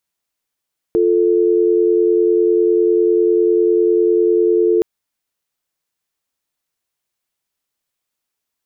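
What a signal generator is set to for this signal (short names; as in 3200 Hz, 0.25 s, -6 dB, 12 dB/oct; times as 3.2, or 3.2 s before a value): call progress tone dial tone, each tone -13.5 dBFS 3.87 s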